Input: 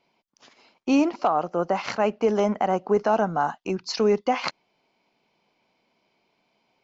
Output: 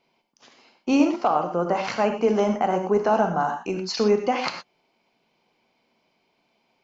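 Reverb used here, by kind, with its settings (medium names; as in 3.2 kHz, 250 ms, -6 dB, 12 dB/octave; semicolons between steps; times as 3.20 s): gated-style reverb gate 140 ms flat, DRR 5 dB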